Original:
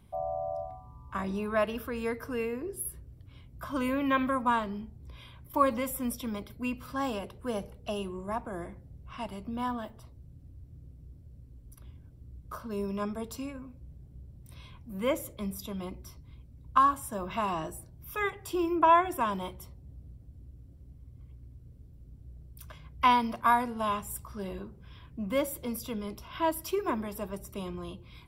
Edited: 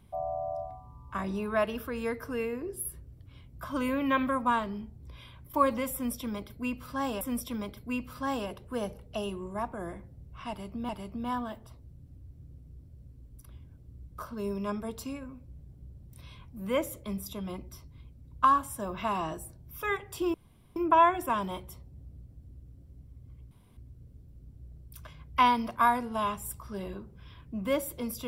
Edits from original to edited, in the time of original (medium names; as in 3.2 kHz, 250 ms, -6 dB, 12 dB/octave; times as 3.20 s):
5.94–7.21 s: loop, 2 plays
9.22–9.62 s: loop, 2 plays
18.67 s: insert room tone 0.42 s
21.42 s: insert room tone 0.26 s